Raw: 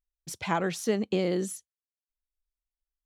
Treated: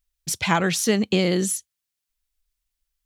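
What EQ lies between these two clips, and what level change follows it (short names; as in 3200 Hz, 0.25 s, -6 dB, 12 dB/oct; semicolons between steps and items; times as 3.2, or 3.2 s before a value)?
tone controls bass +8 dB, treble -2 dB; tilt shelf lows -6.5 dB, about 1500 Hz; +9.0 dB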